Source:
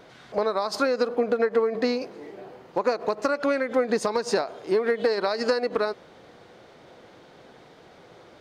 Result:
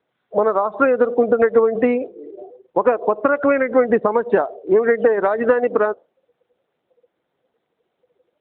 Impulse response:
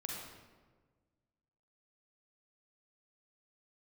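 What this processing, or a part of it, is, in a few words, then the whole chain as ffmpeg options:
mobile call with aggressive noise cancelling: -af "highpass=frequency=120:poles=1,afftdn=noise_reduction=30:noise_floor=-33,volume=8.5dB" -ar 8000 -c:a libopencore_amrnb -b:a 12200

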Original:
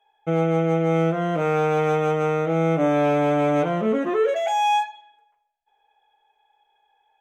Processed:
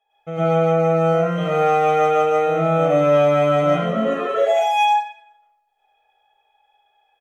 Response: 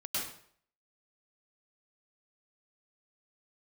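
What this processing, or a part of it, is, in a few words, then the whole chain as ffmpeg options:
microphone above a desk: -filter_complex "[0:a]aecho=1:1:1.6:0.56[link_01];[1:a]atrim=start_sample=2205[link_02];[link_01][link_02]afir=irnorm=-1:irlink=0,asettb=1/sr,asplit=3[link_03][link_04][link_05];[link_03]atrim=end=0.724[link_06];[link_04]atrim=start=0.72:end=1.38,asetpts=PTS-STARTPTS,afade=type=in:duration=0.004:curve=qsin,afade=type=out:start_time=0.656:duration=0.004:curve=qsin,bandreject=frequency=3300:width=5.1[link_07];[link_05]atrim=start=1.376[link_08];[link_06][link_07]acrossfade=duration=0.004:curve1=hsin:curve2=qsin[link_09];[link_09][link_08]acrossfade=duration=0.004:curve1=qsin:curve2=hsin,volume=-1.5dB"

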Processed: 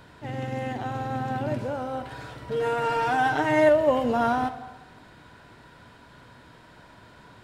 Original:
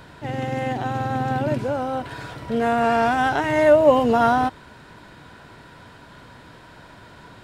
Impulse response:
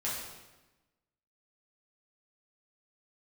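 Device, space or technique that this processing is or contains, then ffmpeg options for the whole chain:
saturated reverb return: -filter_complex "[0:a]asplit=2[link_01][link_02];[1:a]atrim=start_sample=2205[link_03];[link_02][link_03]afir=irnorm=-1:irlink=0,asoftclip=type=tanh:threshold=-9.5dB,volume=-11.5dB[link_04];[link_01][link_04]amix=inputs=2:normalize=0,asettb=1/sr,asplit=3[link_05][link_06][link_07];[link_05]atrim=end=2.504[link_08];[link_06]atrim=start=2.5:end=3.69,asetpts=PTS-STARTPTS,afade=type=in:duration=0.004:curve=qsin,afade=type=out:start_time=1.186:duration=0.004:curve=qsin,aecho=1:1:6.5:0.87,atrim=end_sample=52479[link_09];[link_07]atrim=start=3.686[link_10];[link_08][link_09]acrossfade=duration=0.004:curve1=hsin:curve2=qsin[link_11];[link_11][link_10]acrossfade=duration=0.004:curve1=qsin:curve2=hsin,volume=-7.5dB"

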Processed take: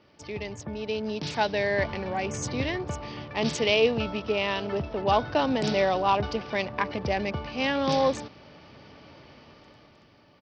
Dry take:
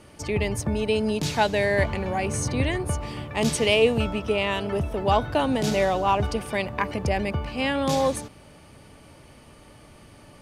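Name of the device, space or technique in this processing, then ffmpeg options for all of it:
Bluetooth headset: -af "highpass=frequency=150:poles=1,dynaudnorm=framelen=250:gausssize=9:maxgain=12.5dB,aresample=16000,aresample=44100,volume=-8.5dB" -ar 44100 -c:a sbc -b:a 64k

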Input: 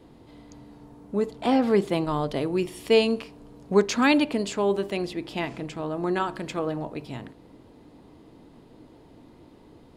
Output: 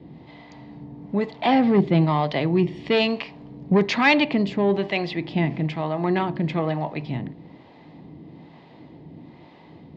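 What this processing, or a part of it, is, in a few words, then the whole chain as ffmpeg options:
guitar amplifier with harmonic tremolo: -filter_complex "[0:a]acrossover=split=500[link_01][link_02];[link_01]aeval=exprs='val(0)*(1-0.7/2+0.7/2*cos(2*PI*1.1*n/s))':channel_layout=same[link_03];[link_02]aeval=exprs='val(0)*(1-0.7/2-0.7/2*cos(2*PI*1.1*n/s))':channel_layout=same[link_04];[link_03][link_04]amix=inputs=2:normalize=0,asoftclip=type=tanh:threshold=-19dB,highpass=84,equalizer=frequency=160:width_type=q:width=4:gain=10,equalizer=frequency=450:width_type=q:width=4:gain=-5,equalizer=frequency=780:width_type=q:width=4:gain=3,equalizer=frequency=1400:width_type=q:width=4:gain=-8,equalizer=frequency=2000:width_type=q:width=4:gain=7,lowpass=frequency=4400:width=0.5412,lowpass=frequency=4400:width=1.3066,volume=8.5dB"

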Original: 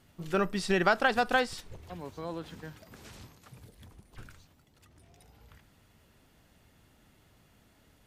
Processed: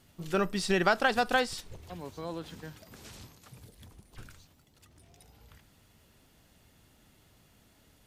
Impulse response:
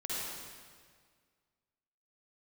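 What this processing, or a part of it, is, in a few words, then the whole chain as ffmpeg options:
exciter from parts: -filter_complex "[0:a]asplit=2[link_01][link_02];[link_02]highpass=2500,asoftclip=type=tanh:threshold=-30dB,volume=-5dB[link_03];[link_01][link_03]amix=inputs=2:normalize=0"

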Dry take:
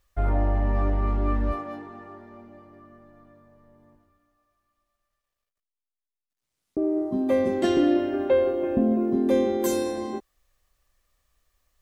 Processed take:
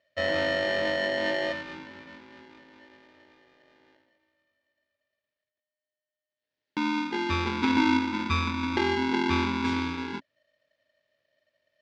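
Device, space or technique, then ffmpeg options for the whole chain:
ring modulator pedal into a guitar cabinet: -af "aeval=exprs='val(0)*sgn(sin(2*PI*610*n/s))':channel_layout=same,highpass=84,equalizer=frequency=110:width_type=q:width=4:gain=4,equalizer=frequency=270:width_type=q:width=4:gain=6,equalizer=frequency=730:width_type=q:width=4:gain=-8,equalizer=frequency=1200:width_type=q:width=4:gain=-7,equalizer=frequency=1800:width_type=q:width=4:gain=4,lowpass=frequency=4500:width=0.5412,lowpass=frequency=4500:width=1.3066,volume=-3.5dB"

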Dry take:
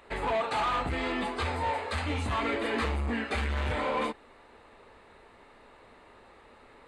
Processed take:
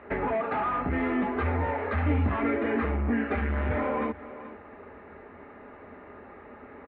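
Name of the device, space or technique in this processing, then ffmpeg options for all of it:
bass amplifier: -af "aecho=1:1:4.9:0.33,aecho=1:1:431:0.0841,acompressor=threshold=-34dB:ratio=4,highpass=66,equalizer=frequency=84:width_type=q:width=4:gain=9,equalizer=frequency=280:width_type=q:width=4:gain=8,equalizer=frequency=990:width_type=q:width=4:gain=-5,lowpass=frequency=2000:width=0.5412,lowpass=frequency=2000:width=1.3066,volume=8dB"

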